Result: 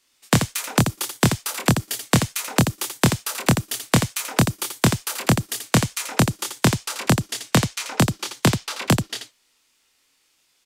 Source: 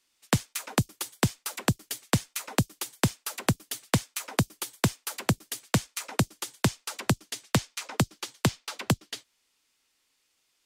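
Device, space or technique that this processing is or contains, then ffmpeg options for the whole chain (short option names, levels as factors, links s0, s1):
slapback doubling: -filter_complex "[0:a]asplit=3[s0][s1][s2];[s1]adelay=25,volume=0.631[s3];[s2]adelay=84,volume=0.447[s4];[s0][s3][s4]amix=inputs=3:normalize=0,volume=2"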